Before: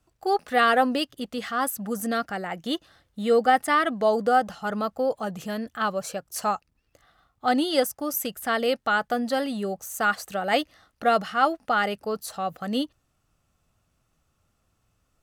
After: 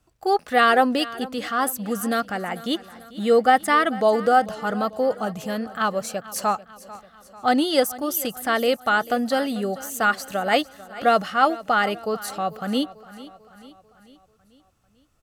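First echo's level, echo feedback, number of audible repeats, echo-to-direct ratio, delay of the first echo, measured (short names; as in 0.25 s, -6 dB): -18.0 dB, 54%, 4, -16.5 dB, 0.443 s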